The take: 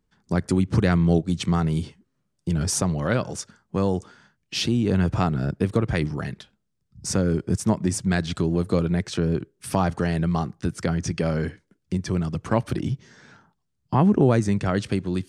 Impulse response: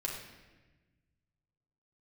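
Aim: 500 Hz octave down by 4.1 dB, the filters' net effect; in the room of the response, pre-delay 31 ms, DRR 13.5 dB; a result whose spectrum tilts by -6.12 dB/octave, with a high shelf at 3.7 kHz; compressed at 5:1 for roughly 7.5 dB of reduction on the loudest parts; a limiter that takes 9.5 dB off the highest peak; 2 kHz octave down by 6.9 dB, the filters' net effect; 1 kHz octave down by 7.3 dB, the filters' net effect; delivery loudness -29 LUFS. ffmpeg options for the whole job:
-filter_complex "[0:a]equalizer=f=500:t=o:g=-3.5,equalizer=f=1000:t=o:g=-7,equalizer=f=2000:t=o:g=-5,highshelf=f=3700:g=-5,acompressor=threshold=0.0708:ratio=5,alimiter=limit=0.0891:level=0:latency=1,asplit=2[s0][s1];[1:a]atrim=start_sample=2205,adelay=31[s2];[s1][s2]afir=irnorm=-1:irlink=0,volume=0.158[s3];[s0][s3]amix=inputs=2:normalize=0,volume=1.26"

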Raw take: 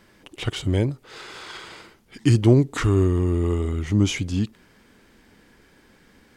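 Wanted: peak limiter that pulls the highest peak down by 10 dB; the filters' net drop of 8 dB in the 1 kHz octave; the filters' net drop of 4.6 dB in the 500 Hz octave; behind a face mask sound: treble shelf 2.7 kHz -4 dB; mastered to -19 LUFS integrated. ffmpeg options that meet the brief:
-af "equalizer=f=500:t=o:g=-5.5,equalizer=f=1000:t=o:g=-9,alimiter=limit=0.133:level=0:latency=1,highshelf=f=2700:g=-4,volume=2.66"

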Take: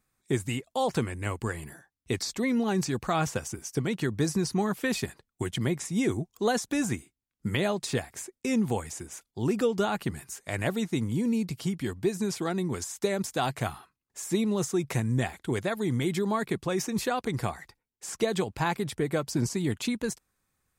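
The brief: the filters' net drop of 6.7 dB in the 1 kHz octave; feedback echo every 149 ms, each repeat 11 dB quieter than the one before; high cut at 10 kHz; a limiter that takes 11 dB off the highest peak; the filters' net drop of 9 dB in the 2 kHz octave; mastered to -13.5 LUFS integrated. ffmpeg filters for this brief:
-af "lowpass=10000,equalizer=f=1000:t=o:g=-7.5,equalizer=f=2000:t=o:g=-9,alimiter=level_in=1.26:limit=0.0631:level=0:latency=1,volume=0.794,aecho=1:1:149|298|447:0.282|0.0789|0.0221,volume=12.6"

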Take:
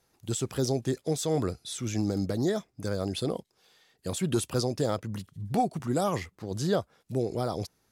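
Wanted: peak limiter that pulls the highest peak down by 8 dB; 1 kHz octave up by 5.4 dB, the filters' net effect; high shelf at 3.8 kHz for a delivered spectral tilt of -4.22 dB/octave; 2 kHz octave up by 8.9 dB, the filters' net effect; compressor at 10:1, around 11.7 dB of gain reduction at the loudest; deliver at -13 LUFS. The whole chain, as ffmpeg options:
-af "equalizer=f=1000:t=o:g=6,equalizer=f=2000:t=o:g=7.5,highshelf=f=3800:g=7,acompressor=threshold=0.0355:ratio=10,volume=15,alimiter=limit=0.891:level=0:latency=1"

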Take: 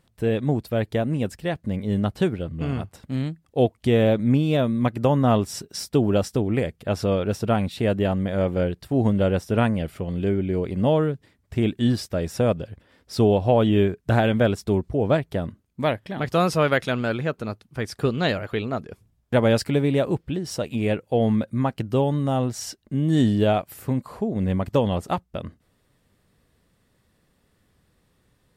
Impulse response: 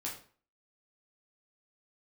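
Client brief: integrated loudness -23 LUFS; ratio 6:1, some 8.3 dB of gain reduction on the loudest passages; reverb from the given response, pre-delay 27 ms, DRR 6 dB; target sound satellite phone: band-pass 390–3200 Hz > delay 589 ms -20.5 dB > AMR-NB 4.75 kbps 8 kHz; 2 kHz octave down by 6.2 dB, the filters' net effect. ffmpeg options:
-filter_complex "[0:a]equalizer=f=2000:t=o:g=-8,acompressor=threshold=0.0708:ratio=6,asplit=2[s0][s1];[1:a]atrim=start_sample=2205,adelay=27[s2];[s1][s2]afir=irnorm=-1:irlink=0,volume=0.473[s3];[s0][s3]amix=inputs=2:normalize=0,highpass=390,lowpass=3200,aecho=1:1:589:0.0944,volume=3.76" -ar 8000 -c:a libopencore_amrnb -b:a 4750

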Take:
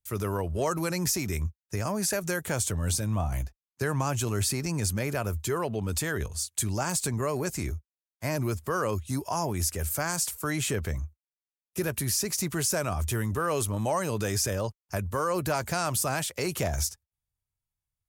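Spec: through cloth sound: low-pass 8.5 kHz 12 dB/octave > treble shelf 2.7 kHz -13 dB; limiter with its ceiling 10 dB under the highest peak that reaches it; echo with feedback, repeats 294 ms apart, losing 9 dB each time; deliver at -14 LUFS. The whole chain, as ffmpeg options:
-af "alimiter=limit=0.0668:level=0:latency=1,lowpass=8500,highshelf=f=2700:g=-13,aecho=1:1:294|588|882|1176:0.355|0.124|0.0435|0.0152,volume=10.6"

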